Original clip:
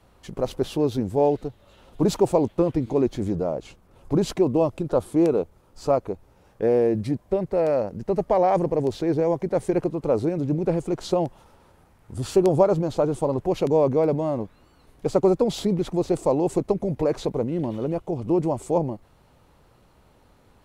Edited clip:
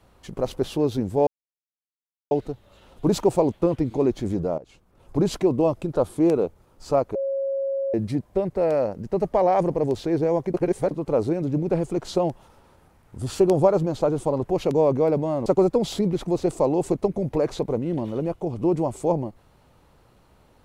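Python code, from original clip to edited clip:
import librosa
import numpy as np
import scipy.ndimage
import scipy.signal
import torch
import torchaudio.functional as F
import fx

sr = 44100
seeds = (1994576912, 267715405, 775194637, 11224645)

y = fx.edit(x, sr, fx.insert_silence(at_s=1.27, length_s=1.04),
    fx.fade_in_from(start_s=3.54, length_s=0.61, floor_db=-15.0),
    fx.bleep(start_s=6.11, length_s=0.79, hz=546.0, db=-22.5),
    fx.reverse_span(start_s=9.5, length_s=0.37),
    fx.cut(start_s=14.42, length_s=0.7), tone=tone)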